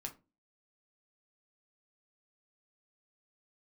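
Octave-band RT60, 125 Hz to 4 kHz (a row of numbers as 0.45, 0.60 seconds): 0.40, 0.45, 0.30, 0.25, 0.20, 0.20 seconds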